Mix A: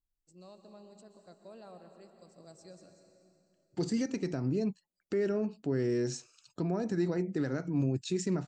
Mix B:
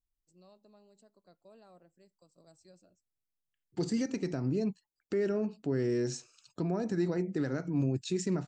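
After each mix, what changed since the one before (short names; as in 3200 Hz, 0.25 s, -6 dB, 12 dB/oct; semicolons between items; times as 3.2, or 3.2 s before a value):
first voice -3.5 dB; reverb: off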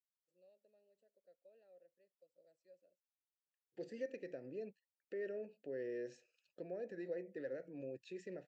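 master: add vowel filter e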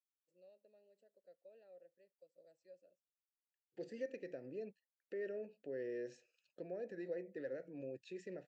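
first voice +4.5 dB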